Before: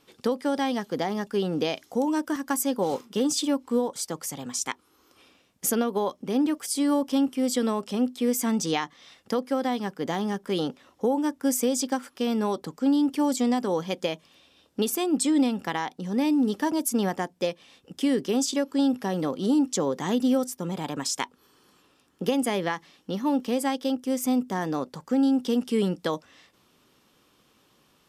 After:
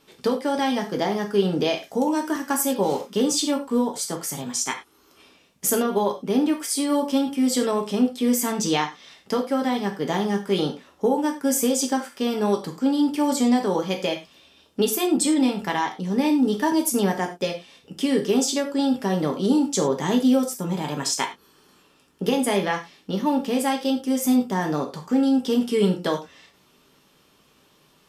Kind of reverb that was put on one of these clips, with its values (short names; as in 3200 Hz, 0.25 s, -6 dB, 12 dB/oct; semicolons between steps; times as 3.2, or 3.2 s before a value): non-linear reverb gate 0.13 s falling, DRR 1.5 dB; gain +2 dB